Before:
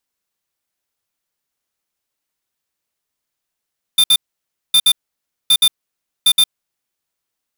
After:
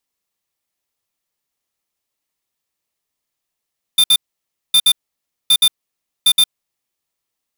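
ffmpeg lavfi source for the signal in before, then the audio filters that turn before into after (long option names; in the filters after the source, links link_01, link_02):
-f lavfi -i "aevalsrc='0.299*(2*lt(mod(3580*t,1),0.5)-1)*clip(min(mod(mod(t,0.76),0.12),0.06-mod(mod(t,0.76),0.12))/0.005,0,1)*lt(mod(t,0.76),0.24)':duration=3.04:sample_rate=44100"
-af "bandreject=frequency=1500:width=8.1"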